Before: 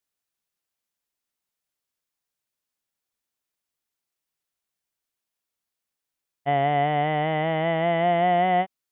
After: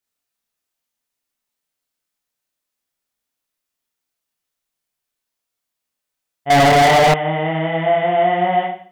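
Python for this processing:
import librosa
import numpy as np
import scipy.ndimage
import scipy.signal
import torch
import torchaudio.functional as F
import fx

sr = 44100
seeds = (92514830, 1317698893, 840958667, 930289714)

y = fx.rev_schroeder(x, sr, rt60_s=0.47, comb_ms=25, drr_db=-2.5)
y = fx.leveller(y, sr, passes=5, at=(6.5, 7.14))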